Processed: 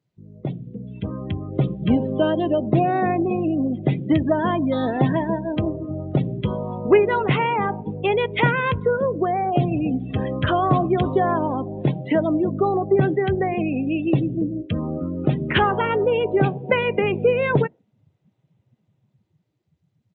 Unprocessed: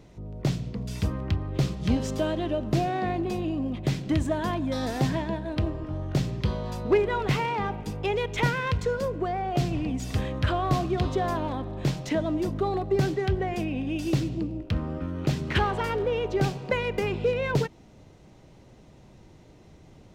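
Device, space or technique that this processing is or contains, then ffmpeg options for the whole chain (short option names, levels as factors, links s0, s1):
Bluetooth headset: -af "highpass=55,afftdn=nr=28:nf=-35,highpass=130,highshelf=f=8900:g=6,dynaudnorm=f=230:g=11:m=2.51,aresample=8000,aresample=44100" -ar 16000 -c:a sbc -b:a 64k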